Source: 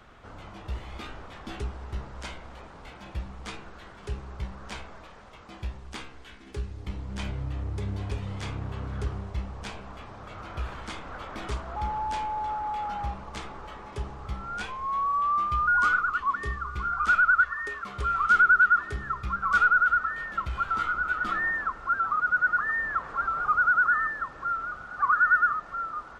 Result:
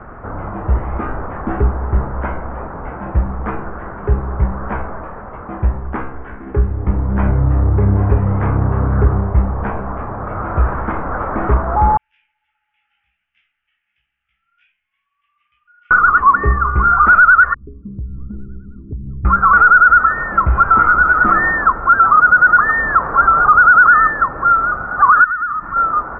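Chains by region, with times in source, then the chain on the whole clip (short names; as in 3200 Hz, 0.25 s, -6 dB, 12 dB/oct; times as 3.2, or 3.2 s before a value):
11.97–15.91 elliptic high-pass 2800 Hz, stop band 60 dB + air absorption 170 m + detuned doubles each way 31 cents
17.54–19.25 inverse Chebyshev low-pass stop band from 690 Hz, stop band 50 dB + compressor, threshold -41 dBFS
25.24–25.76 band shelf 550 Hz -10.5 dB 1.2 oct + compressor 4:1, threshold -37 dBFS
whole clip: inverse Chebyshev low-pass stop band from 3900 Hz, stop band 50 dB; maximiser +20 dB; gain -1 dB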